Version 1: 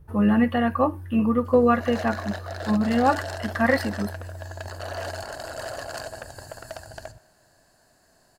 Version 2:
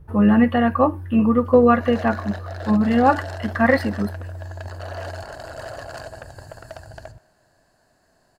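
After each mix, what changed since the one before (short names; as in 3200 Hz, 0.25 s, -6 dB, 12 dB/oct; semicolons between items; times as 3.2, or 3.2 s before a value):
speech +4.5 dB; master: add high shelf 4300 Hz -8 dB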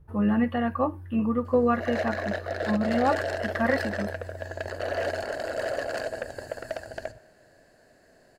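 speech -8.5 dB; background: add graphic EQ 250/500/1000/2000 Hz +3/+10/-7/+8 dB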